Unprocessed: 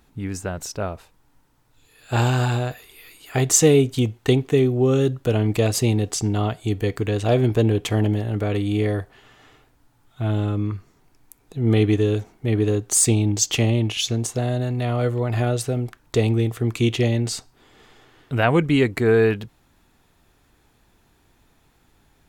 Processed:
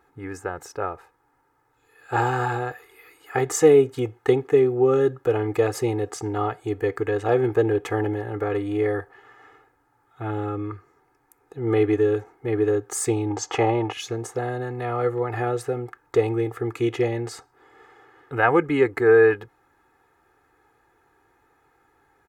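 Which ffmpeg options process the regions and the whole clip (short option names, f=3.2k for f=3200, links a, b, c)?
-filter_complex "[0:a]asettb=1/sr,asplit=3[a][b][c];[a]atrim=end=13.304[d];[b]atrim=start=13.3:end=13.93,asetpts=PTS-STARTPTS,afade=t=in:d=0.004:c=qsin,afade=t=out:st=0.626:d=0.004:c=qsin,lowpass=7.3k,equalizer=f=860:t=o:w=1.4:g=10.5[e];[c]atrim=start=13.926[f];[d][e]acrossfade=d=0.004:c1=hsin:c2=qsin[g];[g][f]acrossfade=d=0.004:c1=qsin:c2=hsin,highpass=f=370:p=1,highshelf=f=2.3k:t=q:w=1.5:g=-11.5,aecho=1:1:2.4:0.72"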